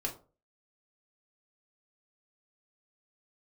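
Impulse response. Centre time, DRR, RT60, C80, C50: 14 ms, 0.5 dB, 0.35 s, 17.5 dB, 12.5 dB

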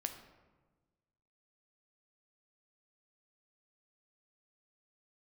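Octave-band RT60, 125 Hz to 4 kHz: 1.8, 1.6, 1.4, 1.2, 1.0, 0.70 seconds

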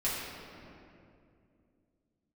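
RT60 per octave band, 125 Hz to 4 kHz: 3.4, 3.3, 2.9, 2.2, 2.1, 1.5 seconds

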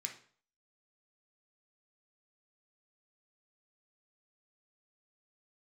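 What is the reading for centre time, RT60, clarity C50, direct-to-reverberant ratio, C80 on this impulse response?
16 ms, 0.50 s, 9.0 dB, 2.0 dB, 14.5 dB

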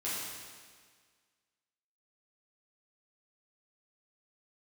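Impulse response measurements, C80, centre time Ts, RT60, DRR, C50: 0.0 dB, 113 ms, 1.7 s, −9.5 dB, −2.0 dB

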